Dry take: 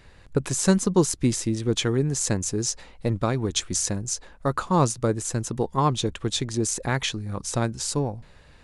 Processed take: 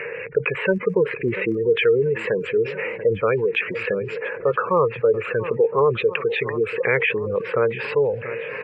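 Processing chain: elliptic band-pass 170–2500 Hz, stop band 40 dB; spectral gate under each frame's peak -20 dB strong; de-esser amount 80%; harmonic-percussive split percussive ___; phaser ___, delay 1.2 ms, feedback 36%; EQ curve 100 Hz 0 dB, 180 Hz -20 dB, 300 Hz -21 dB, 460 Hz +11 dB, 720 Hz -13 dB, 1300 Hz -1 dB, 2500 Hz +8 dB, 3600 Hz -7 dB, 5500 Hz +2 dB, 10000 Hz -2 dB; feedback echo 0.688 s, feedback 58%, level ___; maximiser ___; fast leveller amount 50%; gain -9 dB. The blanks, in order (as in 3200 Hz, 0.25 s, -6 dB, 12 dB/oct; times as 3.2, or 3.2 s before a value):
-5 dB, 0.7 Hz, -23.5 dB, +16.5 dB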